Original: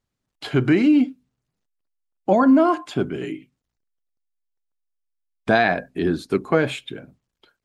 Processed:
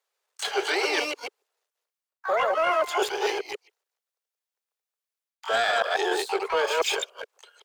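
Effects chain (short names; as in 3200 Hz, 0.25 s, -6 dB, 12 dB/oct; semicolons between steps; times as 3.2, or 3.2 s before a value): reverse delay 0.142 s, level -3.5 dB; steep high-pass 410 Hz 72 dB/oct; sample leveller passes 1; reverse; compressor 8:1, threshold -28 dBFS, peak gain reduction 17 dB; reverse; harmoniser +12 st -5 dB; gain +5 dB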